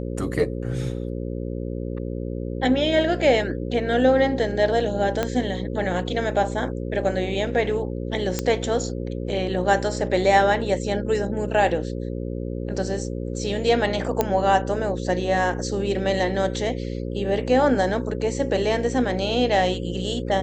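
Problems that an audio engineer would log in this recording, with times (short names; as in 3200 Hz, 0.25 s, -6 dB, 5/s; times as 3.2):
buzz 60 Hz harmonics 9 -29 dBFS
5.23 pop -9 dBFS
8.39 pop -9 dBFS
14.21 pop -6 dBFS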